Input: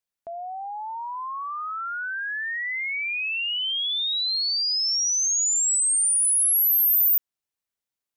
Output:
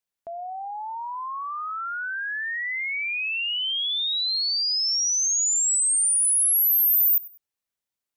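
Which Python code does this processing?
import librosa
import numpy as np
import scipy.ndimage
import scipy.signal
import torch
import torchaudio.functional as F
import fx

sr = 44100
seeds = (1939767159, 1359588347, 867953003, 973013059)

y = fx.echo_feedback(x, sr, ms=98, feedback_pct=28, wet_db=-20)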